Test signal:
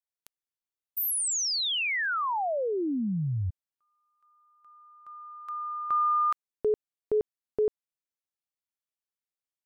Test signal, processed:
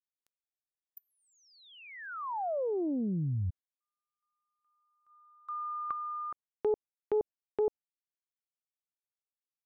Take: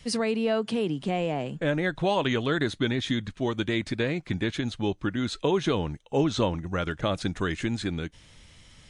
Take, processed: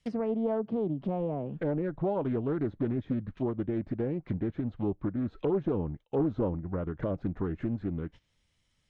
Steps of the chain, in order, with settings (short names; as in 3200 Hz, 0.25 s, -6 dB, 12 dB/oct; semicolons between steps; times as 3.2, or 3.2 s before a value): gate -43 dBFS, range -19 dB; hard clip -18 dBFS; treble ducked by the level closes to 680 Hz, closed at -26 dBFS; Doppler distortion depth 0.36 ms; gain -2.5 dB